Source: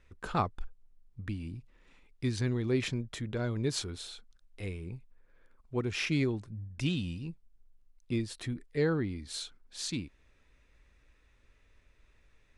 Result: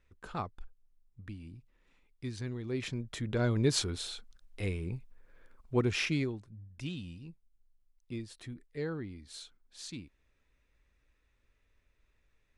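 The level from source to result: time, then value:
0:02.65 −7.5 dB
0:03.44 +4 dB
0:05.87 +4 dB
0:06.44 −8 dB

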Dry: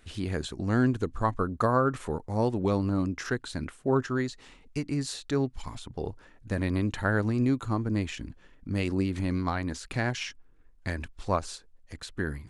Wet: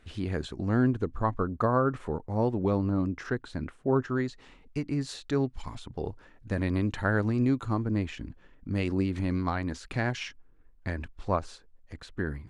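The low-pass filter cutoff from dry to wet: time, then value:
low-pass filter 6 dB per octave
3,000 Hz
from 0:00.69 1,600 Hz
from 0:04.09 2,700 Hz
from 0:05.09 4,400 Hz
from 0:07.85 2,400 Hz
from 0:08.70 3,900 Hz
from 0:10.28 2,100 Hz

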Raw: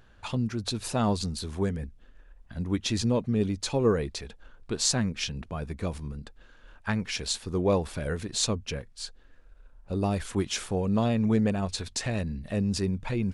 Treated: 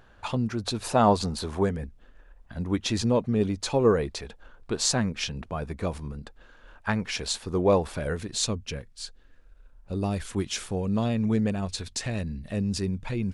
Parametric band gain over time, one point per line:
parametric band 800 Hz 2.3 octaves
0:00.75 +6 dB
0:01.35 +14.5 dB
0:01.78 +5 dB
0:07.97 +5 dB
0:08.42 −2.5 dB

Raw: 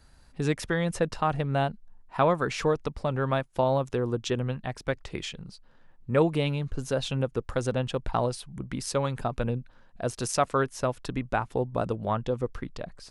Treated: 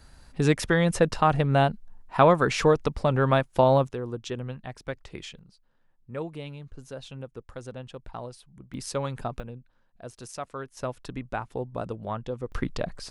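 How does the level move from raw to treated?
+5 dB
from 0:03.87 −5 dB
from 0:05.39 −11.5 dB
from 0:08.74 −2.5 dB
from 0:09.40 −11.5 dB
from 0:10.77 −4.5 dB
from 0:12.52 +7 dB

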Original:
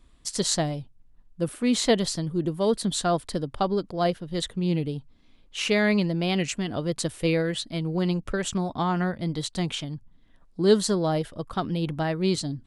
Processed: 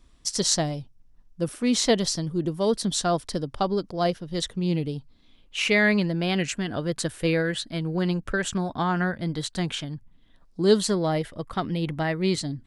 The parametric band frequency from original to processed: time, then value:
parametric band +8 dB 0.37 octaves
0:04.90 5,600 Hz
0:05.95 1,600 Hz
0:09.91 1,600 Hz
0:10.66 7,400 Hz
0:10.90 2,000 Hz

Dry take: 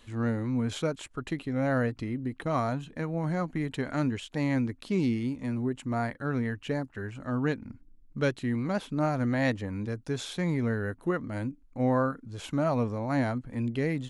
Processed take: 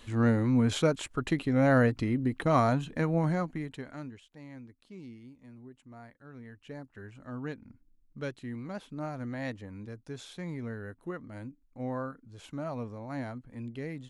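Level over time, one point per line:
0:03.18 +4 dB
0:03.71 −7.5 dB
0:04.34 −19.5 dB
0:06.30 −19.5 dB
0:06.93 −9.5 dB

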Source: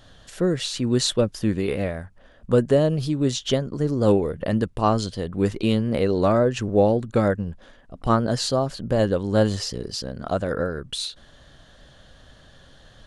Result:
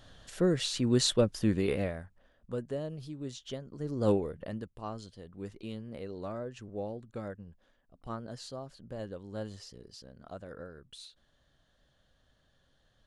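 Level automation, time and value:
0:01.72 −5 dB
0:02.54 −18 dB
0:03.65 −18 dB
0:04.09 −8 dB
0:04.74 −20 dB

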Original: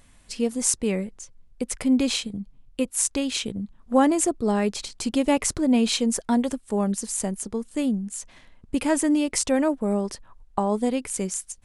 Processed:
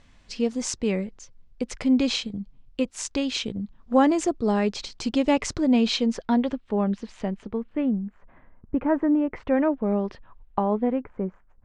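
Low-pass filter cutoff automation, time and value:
low-pass filter 24 dB per octave
0:05.73 6,000 Hz
0:06.70 3,500 Hz
0:07.33 3,500 Hz
0:08.19 1,600 Hz
0:09.19 1,600 Hz
0:09.92 3,300 Hz
0:10.60 3,300 Hz
0:11.10 1,400 Hz

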